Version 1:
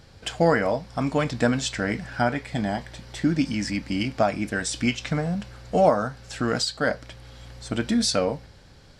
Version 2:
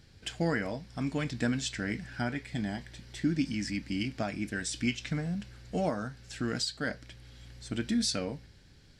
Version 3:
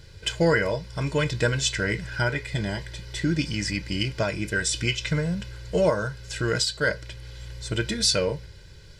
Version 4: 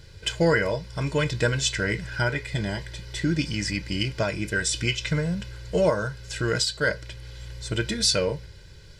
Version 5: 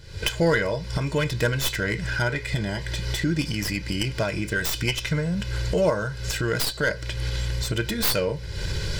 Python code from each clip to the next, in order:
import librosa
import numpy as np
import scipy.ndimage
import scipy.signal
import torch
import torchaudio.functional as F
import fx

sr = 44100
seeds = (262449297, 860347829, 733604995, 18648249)

y1 = fx.band_shelf(x, sr, hz=790.0, db=-8.0, octaves=1.7)
y1 = y1 * 10.0 ** (-6.5 / 20.0)
y2 = y1 + 0.86 * np.pad(y1, (int(2.0 * sr / 1000.0), 0))[:len(y1)]
y2 = y2 * 10.0 ** (7.5 / 20.0)
y3 = y2
y4 = fx.tracing_dist(y3, sr, depth_ms=0.16)
y4 = fx.recorder_agc(y4, sr, target_db=-19.0, rise_db_per_s=63.0, max_gain_db=30)